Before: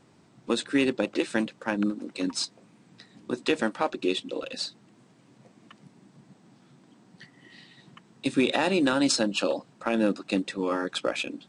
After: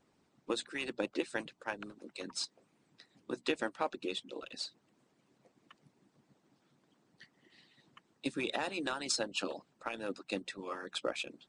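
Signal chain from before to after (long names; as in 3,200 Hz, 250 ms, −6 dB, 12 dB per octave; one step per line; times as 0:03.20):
mains-hum notches 60/120/180/240 Hz
harmonic and percussive parts rebalanced harmonic −18 dB
level −7 dB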